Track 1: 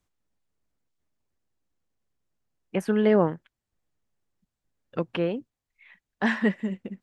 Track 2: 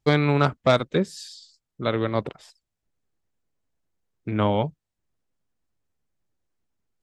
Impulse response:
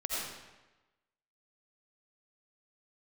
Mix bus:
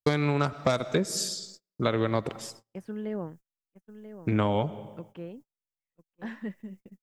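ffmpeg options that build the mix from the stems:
-filter_complex "[0:a]lowshelf=frequency=300:gain=9,volume=-18dB,asplit=2[link_01][link_02];[link_02]volume=-11.5dB[link_03];[1:a]aexciter=amount=3.4:drive=4.1:freq=5300,volume=3dB,asplit=2[link_04][link_05];[link_05]volume=-23dB[link_06];[2:a]atrim=start_sample=2205[link_07];[link_06][link_07]afir=irnorm=-1:irlink=0[link_08];[link_03]aecho=0:1:987:1[link_09];[link_01][link_04][link_08][link_09]amix=inputs=4:normalize=0,agate=range=-31dB:threshold=-48dB:ratio=16:detection=peak,acompressor=threshold=-21dB:ratio=8"

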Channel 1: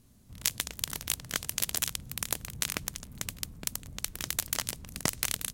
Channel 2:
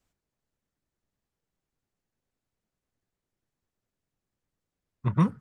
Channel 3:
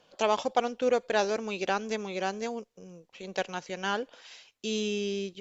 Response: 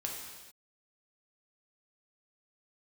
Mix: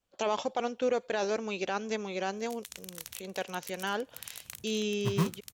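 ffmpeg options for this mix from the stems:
-filter_complex "[0:a]highpass=98,equalizer=frequency=200:width=0.33:gain=-13.5,alimiter=limit=-12dB:level=0:latency=1:release=100,adelay=2050,volume=0dB[link_01];[1:a]acrusher=bits=3:mode=log:mix=0:aa=0.000001,volume=-6.5dB[link_02];[2:a]agate=range=-33dB:threshold=-50dB:ratio=3:detection=peak,highpass=47,volume=-1dB,asplit=2[link_03][link_04];[link_04]apad=whole_len=334307[link_05];[link_01][link_05]sidechaincompress=threshold=-55dB:ratio=3:attack=35:release=124[link_06];[link_06][link_03]amix=inputs=2:normalize=0,bandreject=frequency=4900:width=20,alimiter=limit=-19.5dB:level=0:latency=1:release=10,volume=0dB[link_07];[link_02][link_07]amix=inputs=2:normalize=0"

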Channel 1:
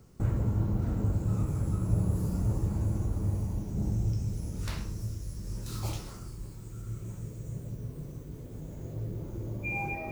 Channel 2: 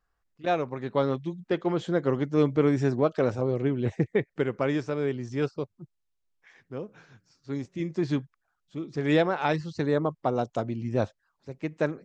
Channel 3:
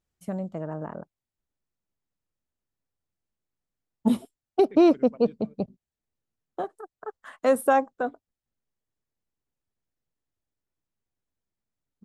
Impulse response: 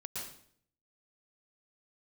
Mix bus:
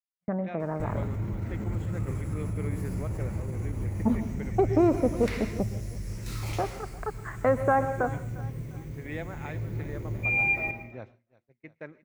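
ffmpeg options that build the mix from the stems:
-filter_complex "[0:a]alimiter=level_in=2.5dB:limit=-24dB:level=0:latency=1:release=60,volume=-2.5dB,adelay=600,volume=-2.5dB,asplit=2[link_01][link_02];[link_02]volume=-3.5dB[link_03];[1:a]volume=-17dB,asplit=3[link_04][link_05][link_06];[link_05]volume=-18dB[link_07];[link_06]volume=-14dB[link_08];[2:a]highshelf=frequency=1900:width_type=q:width=1.5:gain=-10.5,agate=range=-7dB:threshold=-48dB:ratio=16:detection=peak,volume=1dB,asplit=3[link_09][link_10][link_11];[link_10]volume=-15dB[link_12];[link_11]volume=-23dB[link_13];[link_04][link_09]amix=inputs=2:normalize=0,aemphasis=mode=reproduction:type=75kf,acompressor=threshold=-27dB:ratio=2,volume=0dB[link_14];[3:a]atrim=start_sample=2205[link_15];[link_03][link_07][link_12]amix=inputs=3:normalize=0[link_16];[link_16][link_15]afir=irnorm=-1:irlink=0[link_17];[link_08][link_13]amix=inputs=2:normalize=0,aecho=0:1:351|702|1053|1404|1755:1|0.38|0.144|0.0549|0.0209[link_18];[link_01][link_14][link_17][link_18]amix=inputs=4:normalize=0,agate=range=-33dB:threshold=-46dB:ratio=3:detection=peak,equalizer=frequency=2100:width=2.2:gain=13.5"

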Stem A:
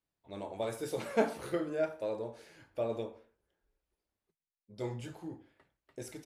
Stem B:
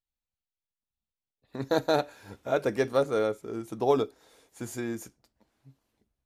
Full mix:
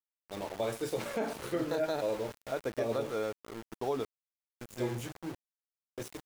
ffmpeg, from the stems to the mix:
ffmpeg -i stem1.wav -i stem2.wav -filter_complex "[0:a]lowpass=11000,acontrast=71,volume=-3.5dB[link_01];[1:a]volume=-7.5dB[link_02];[link_01][link_02]amix=inputs=2:normalize=0,aeval=exprs='val(0)*gte(abs(val(0)),0.00944)':channel_layout=same,alimiter=limit=-22.5dB:level=0:latency=1:release=105" out.wav

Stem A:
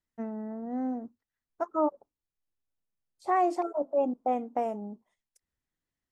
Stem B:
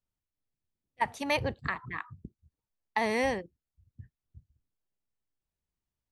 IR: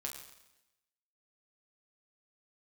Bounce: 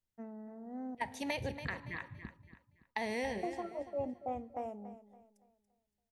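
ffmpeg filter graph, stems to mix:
-filter_complex "[0:a]volume=-11.5dB,asplit=3[link_01][link_02][link_03];[link_01]atrim=end=0.95,asetpts=PTS-STARTPTS,afade=type=out:start_time=0.946:duration=0.004:curve=hsin[link_04];[link_02]atrim=start=0.95:end=3.43,asetpts=PTS-STARTPTS,volume=0[link_05];[link_03]atrim=start=3.43,asetpts=PTS-STARTPTS,afade=type=in:duration=0.004:curve=hsin[link_06];[link_04][link_05][link_06]concat=n=3:v=0:a=1,asplit=3[link_07][link_08][link_09];[link_08]volume=-16.5dB[link_10];[link_09]volume=-13dB[link_11];[1:a]equalizer=frequency=1200:width=3.4:gain=-13,acompressor=threshold=-31dB:ratio=5,volume=-4.5dB,asplit=3[link_12][link_13][link_14];[link_13]volume=-7dB[link_15];[link_14]volume=-9dB[link_16];[2:a]atrim=start_sample=2205[link_17];[link_10][link_15]amix=inputs=2:normalize=0[link_18];[link_18][link_17]afir=irnorm=-1:irlink=0[link_19];[link_11][link_16]amix=inputs=2:normalize=0,aecho=0:1:283|566|849|1132|1415:1|0.33|0.109|0.0359|0.0119[link_20];[link_07][link_12][link_19][link_20]amix=inputs=4:normalize=0"

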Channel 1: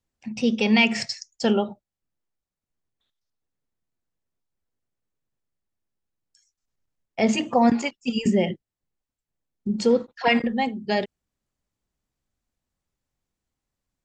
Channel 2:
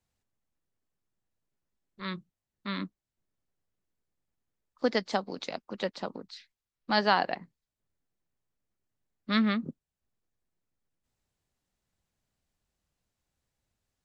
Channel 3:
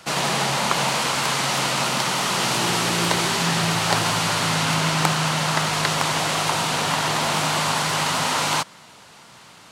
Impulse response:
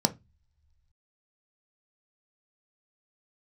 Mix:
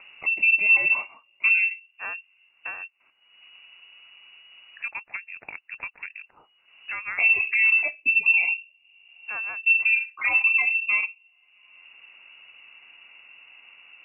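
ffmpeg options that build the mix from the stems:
-filter_complex "[0:a]alimiter=limit=-16.5dB:level=0:latency=1:release=40,volume=-6.5dB,asplit=2[link_01][link_02];[link_02]volume=-6.5dB[link_03];[1:a]volume=-4.5dB,afade=type=out:start_time=2.54:duration=0.22:silence=0.354813[link_04];[3:a]atrim=start_sample=2205[link_05];[link_03][link_05]afir=irnorm=-1:irlink=0[link_06];[link_01][link_04][link_06]amix=inputs=3:normalize=0,acompressor=mode=upward:threshold=-23dB:ratio=2.5,lowpass=frequency=2500:width_type=q:width=0.5098,lowpass=frequency=2500:width_type=q:width=0.6013,lowpass=frequency=2500:width_type=q:width=0.9,lowpass=frequency=2500:width_type=q:width=2.563,afreqshift=-2900,acompressor=threshold=-21dB:ratio=1.5"

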